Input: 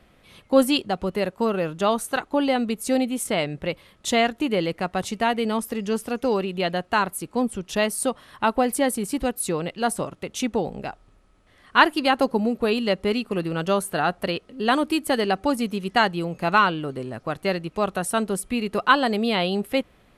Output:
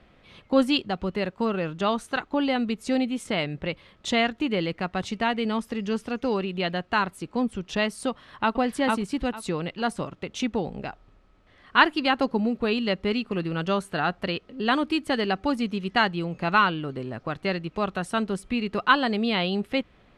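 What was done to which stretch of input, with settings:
0:08.10–0:08.57: delay throw 450 ms, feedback 20%, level −2 dB
whole clip: low-pass filter 4,700 Hz 12 dB per octave; dynamic equaliser 590 Hz, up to −5 dB, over −34 dBFS, Q 0.82

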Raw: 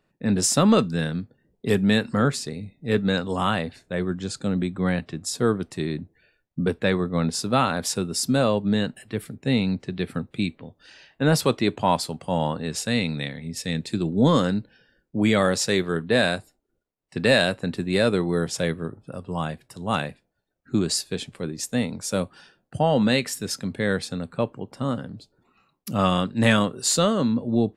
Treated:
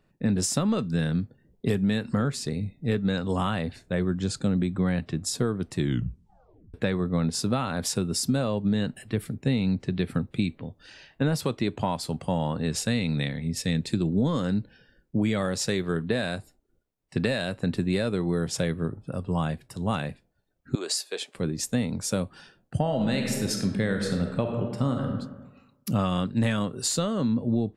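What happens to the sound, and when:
0:05.77: tape stop 0.97 s
0:20.75–0:21.35: high-pass filter 440 Hz 24 dB per octave
0:22.79–0:25.12: thrown reverb, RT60 1.1 s, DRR 4 dB
whole clip: downward compressor 10 to 1, threshold −24 dBFS; low-shelf EQ 180 Hz +8.5 dB

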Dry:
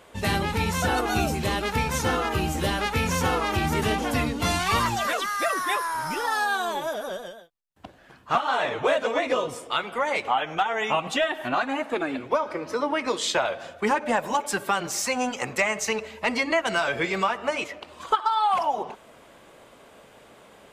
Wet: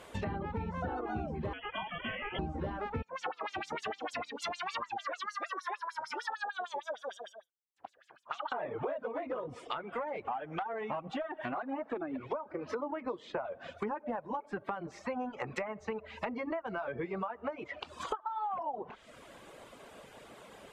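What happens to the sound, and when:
0:01.53–0:02.39: voice inversion scrambler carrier 3,300 Hz
0:03.02–0:08.52: auto-filter band-pass sine 6.6 Hz 520–7,800 Hz
0:09.12–0:11.73: saturating transformer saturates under 1,300 Hz
whole clip: treble cut that deepens with the level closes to 1,100 Hz, closed at −24.5 dBFS; reverb reduction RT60 0.68 s; downward compressor, threshold −34 dBFS

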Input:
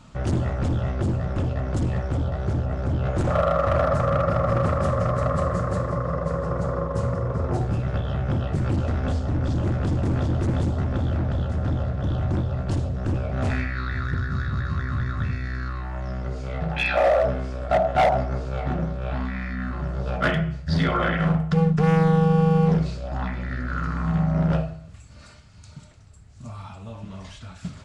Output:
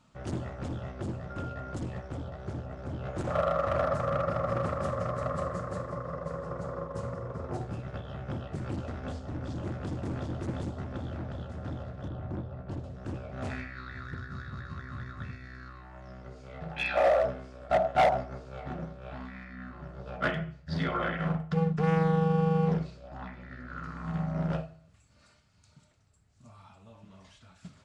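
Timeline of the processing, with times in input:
0:01.29–0:01.73: steady tone 1,400 Hz −33 dBFS
0:12.08–0:12.84: low-pass filter 1,400 Hz 6 dB per octave
0:19.44–0:23.84: high-shelf EQ 6,200 Hz −8 dB
whole clip: low-shelf EQ 100 Hz −10 dB; expander for the loud parts 1.5 to 1, over −35 dBFS; level −3.5 dB

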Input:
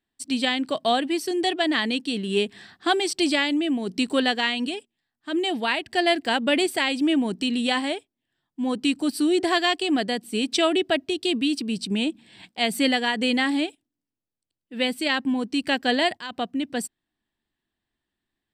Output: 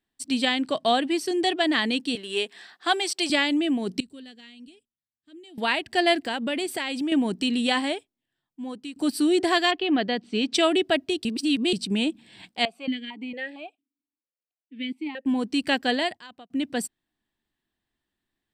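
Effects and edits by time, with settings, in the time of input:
0:00.67–0:01.60: low-pass filter 11,000 Hz
0:02.15–0:03.30: high-pass filter 500 Hz
0:04.00–0:05.58: guitar amp tone stack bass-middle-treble 10-0-1
0:06.26–0:07.12: downward compressor 3 to 1, threshold −26 dBFS
0:07.85–0:08.96: fade out linear, to −18 dB
0:09.70–0:10.53: low-pass filter 3,100 Hz → 6,200 Hz 24 dB per octave
0:11.25–0:11.73: reverse
0:12.65–0:15.26: formant filter that steps through the vowels 4.4 Hz
0:15.76–0:16.50: fade out

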